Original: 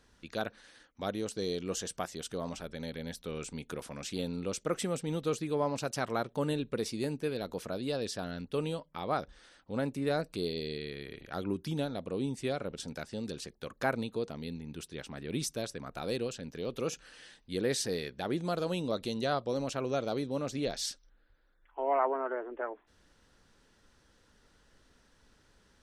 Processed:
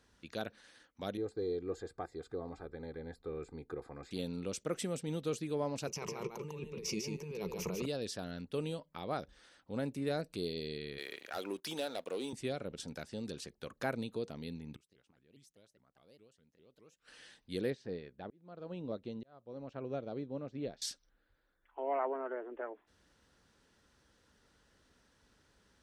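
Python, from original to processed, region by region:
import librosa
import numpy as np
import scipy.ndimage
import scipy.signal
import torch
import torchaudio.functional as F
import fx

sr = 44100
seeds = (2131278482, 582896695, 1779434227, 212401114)

y = fx.chain(x, sr, fx.moving_average(points=15),
    fx.comb(ms=2.5, depth=0.67), at=(1.17, 4.11))
y = fx.chain(y, sr, fx.ripple_eq(per_octave=0.78, db=15),
    fx.over_compress(threshold_db=-38.0, ratio=-1.0),
    fx.echo_single(ms=149, db=-4.5), at=(5.87, 7.86))
y = fx.chain(y, sr, fx.highpass(hz=540.0, slope=12),
    fx.high_shelf(hz=7600.0, db=4.0),
    fx.leveller(passes=2), at=(10.98, 12.33))
y = fx.chain(y, sr, fx.gate_flip(shuts_db=-35.0, range_db=-25),
    fx.vibrato_shape(shape='saw_up', rate_hz=4.9, depth_cents=250.0), at=(14.75, 17.08))
y = fx.chain(y, sr, fx.auto_swell(attack_ms=552.0),
    fx.spacing_loss(db_at_10k=32),
    fx.upward_expand(threshold_db=-48.0, expansion=1.5), at=(17.7, 20.82))
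y = scipy.signal.sosfilt(scipy.signal.butter(2, 44.0, 'highpass', fs=sr, output='sos'), y)
y = fx.dynamic_eq(y, sr, hz=1100.0, q=1.2, threshold_db=-45.0, ratio=4.0, max_db=-5)
y = y * librosa.db_to_amplitude(-3.5)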